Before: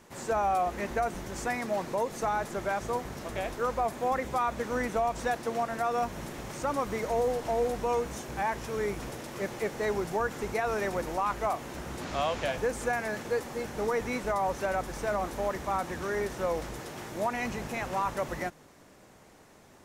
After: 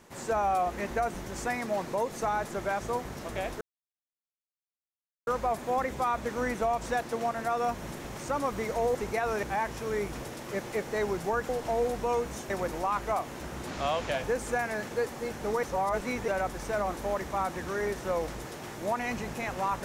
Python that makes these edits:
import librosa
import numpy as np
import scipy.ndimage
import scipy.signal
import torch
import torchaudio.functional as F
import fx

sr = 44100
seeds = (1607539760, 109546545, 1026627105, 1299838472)

y = fx.edit(x, sr, fx.insert_silence(at_s=3.61, length_s=1.66),
    fx.swap(start_s=7.29, length_s=1.01, other_s=10.36, other_length_s=0.48),
    fx.reverse_span(start_s=13.97, length_s=0.65), tone=tone)